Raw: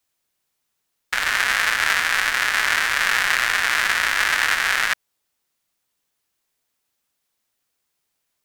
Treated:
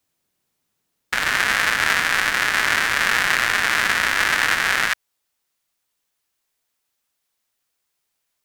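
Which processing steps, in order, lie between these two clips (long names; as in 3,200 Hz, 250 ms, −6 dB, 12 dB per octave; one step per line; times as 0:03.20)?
parametric band 180 Hz +9 dB 2.9 octaves, from 0:04.89 −3.5 dB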